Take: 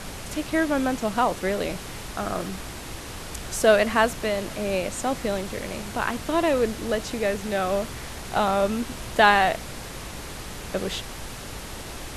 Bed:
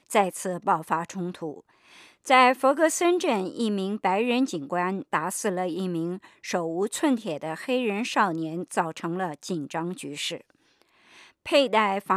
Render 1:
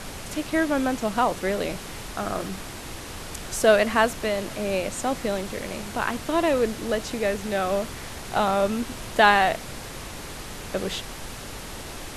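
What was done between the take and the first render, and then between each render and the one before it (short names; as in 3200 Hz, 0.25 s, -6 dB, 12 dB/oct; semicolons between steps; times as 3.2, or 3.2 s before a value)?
de-hum 60 Hz, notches 3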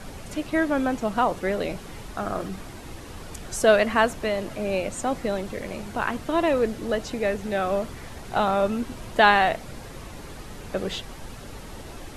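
denoiser 8 dB, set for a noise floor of -37 dBFS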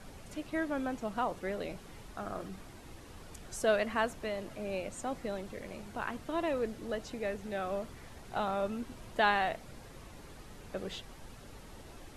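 gain -11 dB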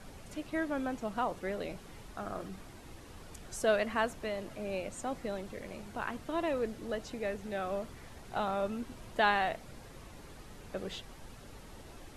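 nothing audible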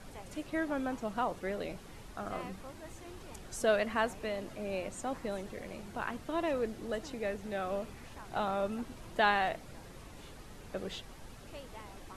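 add bed -29.5 dB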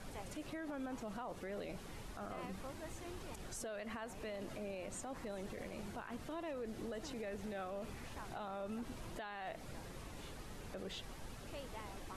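compressor, threshold -35 dBFS, peak gain reduction 12 dB; limiter -36.5 dBFS, peak gain reduction 11 dB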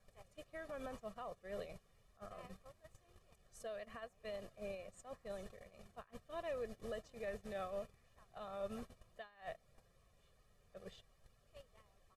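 gate -43 dBFS, range -24 dB; comb 1.7 ms, depth 71%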